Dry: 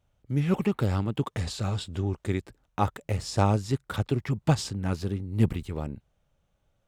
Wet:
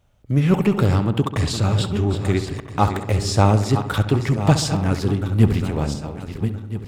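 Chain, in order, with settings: backward echo that repeats 660 ms, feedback 47%, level -10 dB; in parallel at -6 dB: overload inside the chain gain 27 dB; on the sum: filtered feedback delay 67 ms, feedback 65%, low-pass 2.9 kHz, level -11.5 dB; trim +6 dB

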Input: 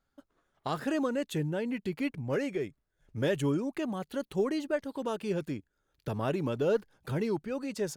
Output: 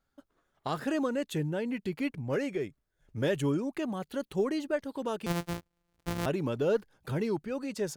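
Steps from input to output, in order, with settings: 5.26–6.26 s: sorted samples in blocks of 256 samples

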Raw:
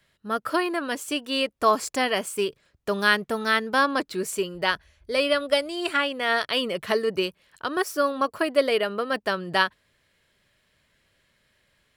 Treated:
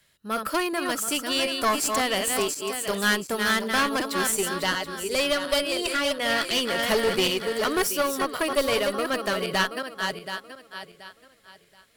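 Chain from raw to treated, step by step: backward echo that repeats 364 ms, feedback 51%, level -6 dB; 6.79–7.87 s: waveshaping leveller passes 1; treble shelf 4.8 kHz +12 dB; one-sided clip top -22 dBFS; trim -1 dB

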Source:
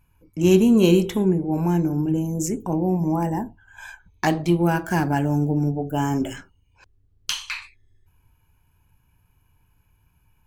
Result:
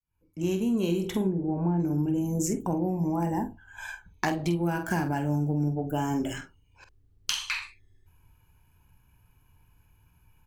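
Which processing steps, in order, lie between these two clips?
fade-in on the opening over 1.09 s; 1.27–1.80 s: low-pass 1.1 kHz 12 dB/octave; compression 10:1, threshold -24 dBFS, peak gain reduction 12 dB; doubling 47 ms -9 dB

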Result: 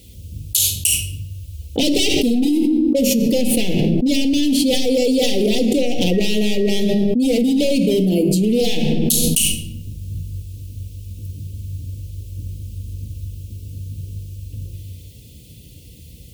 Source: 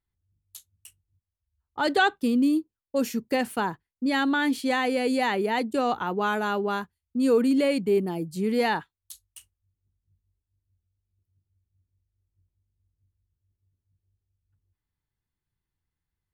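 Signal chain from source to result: high-pass 51 Hz 24 dB/octave; de-hum 83.43 Hz, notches 3; wavefolder -21.5 dBFS; Chebyshev band-stop 550–2700 Hz, order 3; 6.12–6.81 s: whistle 1.9 kHz -51 dBFS; simulated room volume 2200 m³, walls furnished, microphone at 1.9 m; level flattener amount 100%; trim +4.5 dB

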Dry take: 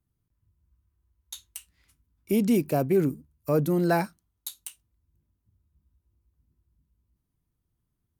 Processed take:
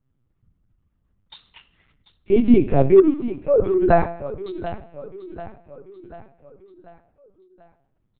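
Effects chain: 2.97–3.89 s: formants replaced by sine waves; low-pass 2 kHz 6 dB/octave; comb 7.5 ms, depth 64%; hard clipper -12.5 dBFS, distortion -16 dB; feedback delay 738 ms, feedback 51%, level -14 dB; reverberation RT60 0.80 s, pre-delay 26 ms, DRR 12.5 dB; LPC vocoder at 8 kHz pitch kept; trim +7.5 dB

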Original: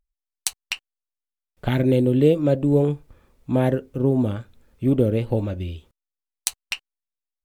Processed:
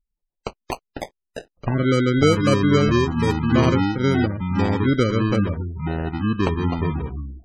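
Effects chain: sample-and-hold 25×; ever faster or slower copies 112 ms, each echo -4 st, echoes 2; spectral gate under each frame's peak -25 dB strong

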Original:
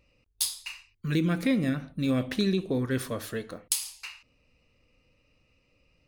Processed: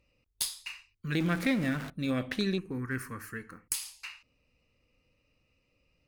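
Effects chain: 1.20–1.90 s: jump at every zero crossing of -33 dBFS; dynamic bell 1.7 kHz, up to +6 dB, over -49 dBFS, Q 0.99; Chebyshev shaper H 2 -19 dB, 3 -15 dB, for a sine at -8.5 dBFS; in parallel at -6 dB: saturation -26 dBFS, distortion -11 dB; 2.58–3.74 s: on the sum: static phaser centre 1.5 kHz, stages 4; trim -2 dB

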